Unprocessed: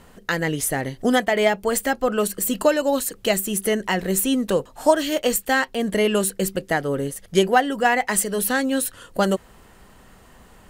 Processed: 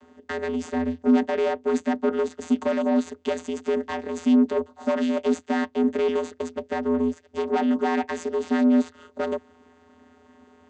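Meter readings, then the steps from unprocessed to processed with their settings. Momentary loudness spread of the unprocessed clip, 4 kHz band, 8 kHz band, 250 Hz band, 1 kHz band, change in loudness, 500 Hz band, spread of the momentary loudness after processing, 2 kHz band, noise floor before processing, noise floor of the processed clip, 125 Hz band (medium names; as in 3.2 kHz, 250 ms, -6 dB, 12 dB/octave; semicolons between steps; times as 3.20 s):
5 LU, -12.5 dB, -20.0 dB, +2.0 dB, -7.0 dB, -3.0 dB, -3.5 dB, 9 LU, -10.5 dB, -50 dBFS, -57 dBFS, under -10 dB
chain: valve stage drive 23 dB, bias 0.75; vocoder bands 16, square 83.5 Hz; trim +6 dB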